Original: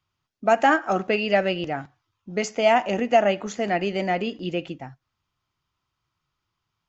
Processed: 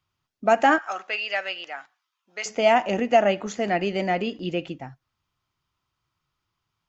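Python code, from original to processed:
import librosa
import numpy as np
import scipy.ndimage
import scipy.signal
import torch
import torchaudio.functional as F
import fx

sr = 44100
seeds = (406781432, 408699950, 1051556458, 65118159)

y = fx.highpass(x, sr, hz=1100.0, slope=12, at=(0.78, 2.46))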